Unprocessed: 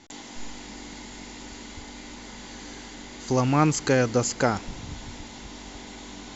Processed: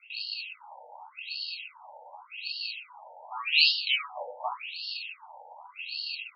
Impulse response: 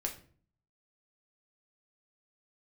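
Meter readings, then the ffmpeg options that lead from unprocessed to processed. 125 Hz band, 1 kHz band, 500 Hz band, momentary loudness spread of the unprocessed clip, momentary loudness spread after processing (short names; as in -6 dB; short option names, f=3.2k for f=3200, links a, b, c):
under -40 dB, -8.0 dB, -19.0 dB, 19 LU, 27 LU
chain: -filter_complex "[0:a]acrossover=split=4100[a][b];[b]acompressor=threshold=-53dB:ratio=4:attack=1:release=60[c];[a][c]amix=inputs=2:normalize=0,bass=f=250:g=-14,treble=f=4k:g=6,bandreject=f=50.07:t=h:w=4,bandreject=f=100.14:t=h:w=4,bandreject=f=150.21:t=h:w=4,bandreject=f=200.28:t=h:w=4,bandreject=f=250.35:t=h:w=4,bandreject=f=300.42:t=h:w=4,bandreject=f=350.49:t=h:w=4,bandreject=f=400.56:t=h:w=4,bandreject=f=450.63:t=h:w=4,bandreject=f=500.7:t=h:w=4,bandreject=f=550.77:t=h:w=4,bandreject=f=600.84:t=h:w=4,bandreject=f=650.91:t=h:w=4,bandreject=f=700.98:t=h:w=4,bandreject=f=751.05:t=h:w=4,bandreject=f=801.12:t=h:w=4,bandreject=f=851.19:t=h:w=4,bandreject=f=901.26:t=h:w=4,bandreject=f=951.33:t=h:w=4,bandreject=f=1.0014k:t=h:w=4,bandreject=f=1.05147k:t=h:w=4,bandreject=f=1.10154k:t=h:w=4,bandreject=f=1.15161k:t=h:w=4,bandreject=f=1.20168k:t=h:w=4,bandreject=f=1.25175k:t=h:w=4,bandreject=f=1.30182k:t=h:w=4,bandreject=f=1.35189k:t=h:w=4,bandreject=f=1.40196k:t=h:w=4,bandreject=f=1.45203k:t=h:w=4,bandreject=f=1.5021k:t=h:w=4,bandreject=f=1.55217k:t=h:w=4,bandreject=f=1.60224k:t=h:w=4,bandreject=f=1.65231k:t=h:w=4,bandreject=f=1.70238k:t=h:w=4,bandreject=f=1.75245k:t=h:w=4,asplit=2[d][e];[e]acompressor=threshold=-37dB:ratio=6,volume=-2.5dB[f];[d][f]amix=inputs=2:normalize=0,equalizer=f=125:t=o:w=1:g=12,equalizer=f=250:t=o:w=1:g=-3,equalizer=f=500:t=o:w=1:g=-4,equalizer=f=1k:t=o:w=1:g=11,equalizer=f=2k:t=o:w=1:g=-10,equalizer=f=4k:t=o:w=1:g=-11,acrusher=samples=25:mix=1:aa=0.000001,aexciter=amount=11.2:drive=7.7:freq=2.6k,aresample=22050,aresample=44100[g];[1:a]atrim=start_sample=2205[h];[g][h]afir=irnorm=-1:irlink=0,alimiter=level_in=-7dB:limit=-1dB:release=50:level=0:latency=1,afftfilt=real='re*between(b*sr/1024,650*pow(3900/650,0.5+0.5*sin(2*PI*0.87*pts/sr))/1.41,650*pow(3900/650,0.5+0.5*sin(2*PI*0.87*pts/sr))*1.41)':imag='im*between(b*sr/1024,650*pow(3900/650,0.5+0.5*sin(2*PI*0.87*pts/sr))/1.41,650*pow(3900/650,0.5+0.5*sin(2*PI*0.87*pts/sr))*1.41)':win_size=1024:overlap=0.75"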